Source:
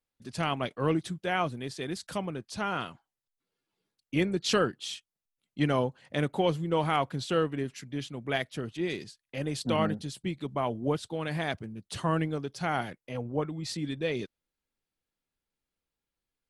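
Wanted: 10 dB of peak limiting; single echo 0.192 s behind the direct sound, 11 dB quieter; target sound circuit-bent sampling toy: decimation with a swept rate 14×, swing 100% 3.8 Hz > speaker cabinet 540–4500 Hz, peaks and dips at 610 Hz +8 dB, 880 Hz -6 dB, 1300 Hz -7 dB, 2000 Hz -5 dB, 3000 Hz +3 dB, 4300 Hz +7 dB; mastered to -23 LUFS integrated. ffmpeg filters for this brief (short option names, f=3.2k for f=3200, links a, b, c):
-af "alimiter=limit=-22.5dB:level=0:latency=1,aecho=1:1:192:0.282,acrusher=samples=14:mix=1:aa=0.000001:lfo=1:lforange=14:lforate=3.8,highpass=540,equalizer=f=610:t=q:w=4:g=8,equalizer=f=880:t=q:w=4:g=-6,equalizer=f=1.3k:t=q:w=4:g=-7,equalizer=f=2k:t=q:w=4:g=-5,equalizer=f=3k:t=q:w=4:g=3,equalizer=f=4.3k:t=q:w=4:g=7,lowpass=f=4.5k:w=0.5412,lowpass=f=4.5k:w=1.3066,volume=15.5dB"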